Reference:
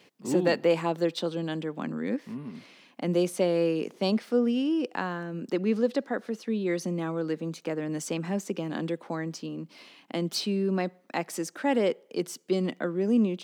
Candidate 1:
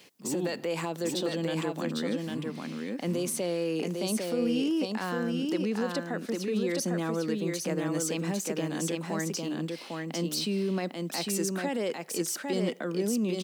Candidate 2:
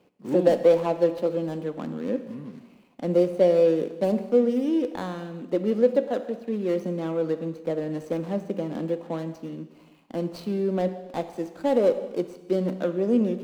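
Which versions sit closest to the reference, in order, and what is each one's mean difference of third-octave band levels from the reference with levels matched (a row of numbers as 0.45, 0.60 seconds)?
2, 1; 5.0, 8.0 decibels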